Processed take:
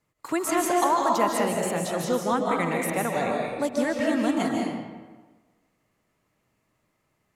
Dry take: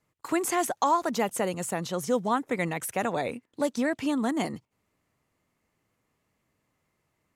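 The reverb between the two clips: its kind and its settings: algorithmic reverb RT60 1.3 s, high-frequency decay 0.7×, pre-delay 110 ms, DRR -1 dB

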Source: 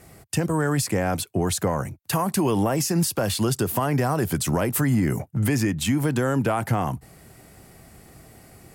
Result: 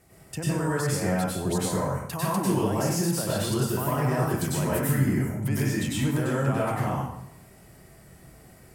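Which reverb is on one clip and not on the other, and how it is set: plate-style reverb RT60 0.75 s, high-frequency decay 0.75×, pre-delay 85 ms, DRR -7 dB; trim -10.5 dB

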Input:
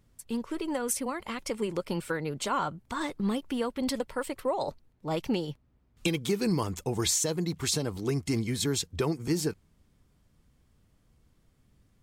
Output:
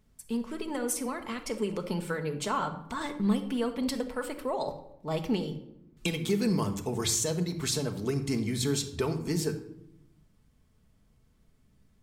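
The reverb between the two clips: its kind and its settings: simulated room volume 2200 m³, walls furnished, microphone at 1.5 m; trim -2 dB

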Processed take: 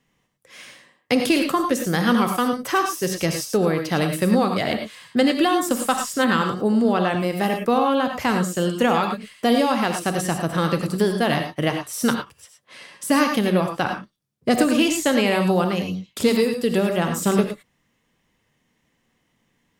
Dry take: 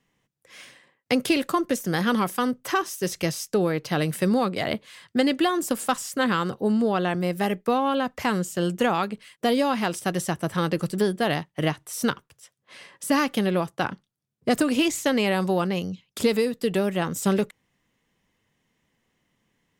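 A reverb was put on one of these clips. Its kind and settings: gated-style reverb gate 130 ms rising, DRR 4.5 dB; trim +2.5 dB

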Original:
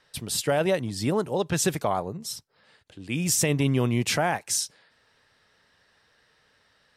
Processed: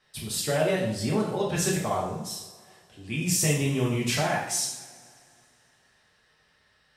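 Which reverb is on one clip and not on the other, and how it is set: two-slope reverb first 0.65 s, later 2.6 s, from -21 dB, DRR -5 dB; trim -7 dB

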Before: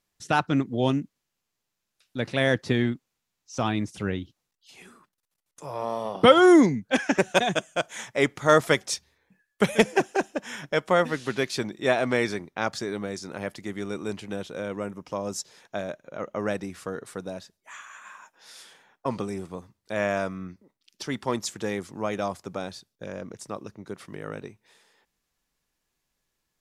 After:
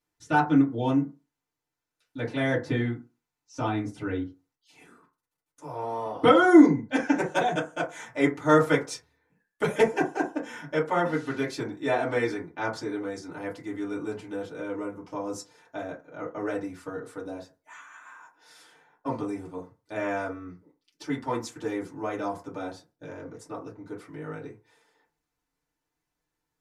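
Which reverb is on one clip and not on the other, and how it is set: FDN reverb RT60 0.31 s, low-frequency decay 0.9×, high-frequency decay 0.35×, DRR -7.5 dB; trim -11 dB

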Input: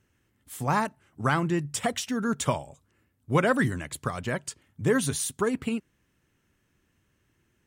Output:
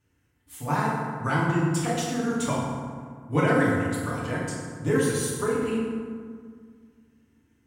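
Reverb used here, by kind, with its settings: FDN reverb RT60 1.9 s, low-frequency decay 1.3×, high-frequency decay 0.5×, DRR -7 dB; trim -7 dB

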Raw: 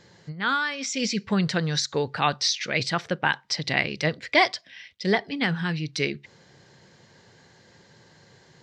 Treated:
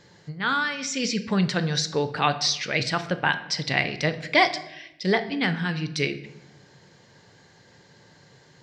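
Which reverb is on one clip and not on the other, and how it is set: simulated room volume 300 m³, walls mixed, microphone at 0.38 m

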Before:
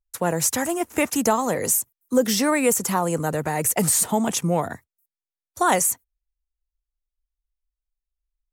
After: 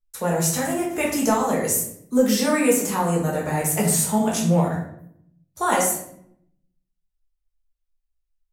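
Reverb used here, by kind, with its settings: simulated room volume 140 m³, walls mixed, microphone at 1.4 m; trim -5.5 dB

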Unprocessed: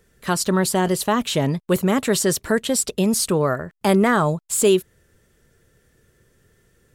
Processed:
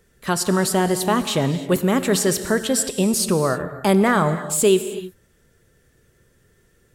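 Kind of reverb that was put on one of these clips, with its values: gated-style reverb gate 340 ms flat, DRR 10 dB

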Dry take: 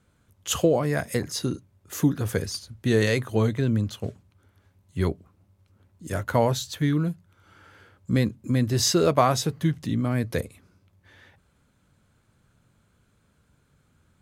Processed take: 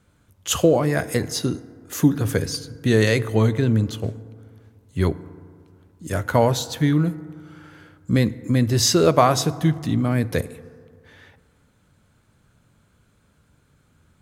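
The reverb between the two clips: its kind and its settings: FDN reverb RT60 2.1 s, low-frequency decay 1×, high-frequency decay 0.35×, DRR 15.5 dB; trim +4 dB

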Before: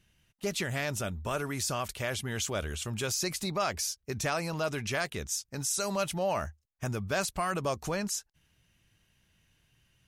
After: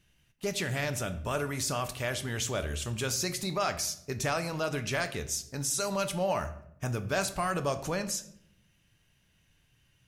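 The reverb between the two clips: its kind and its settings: simulated room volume 150 m³, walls mixed, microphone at 0.33 m

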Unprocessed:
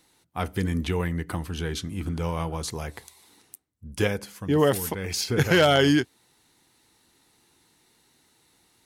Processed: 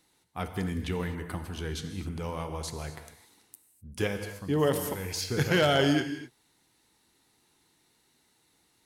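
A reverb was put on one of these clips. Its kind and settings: gated-style reverb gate 280 ms flat, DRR 7.5 dB; trim -5.5 dB

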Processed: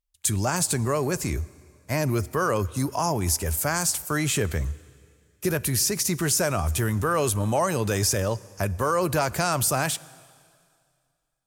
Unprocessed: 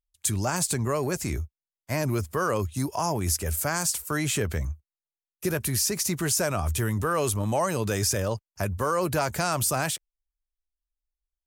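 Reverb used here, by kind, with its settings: plate-style reverb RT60 2.2 s, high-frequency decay 1×, DRR 19.5 dB; trim +2 dB

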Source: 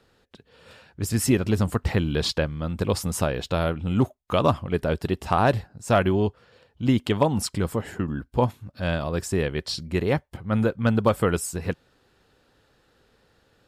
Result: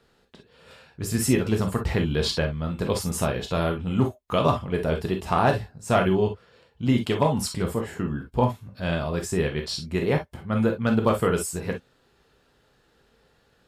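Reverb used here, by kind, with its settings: gated-style reverb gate 80 ms flat, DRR 2.5 dB; trim -2 dB

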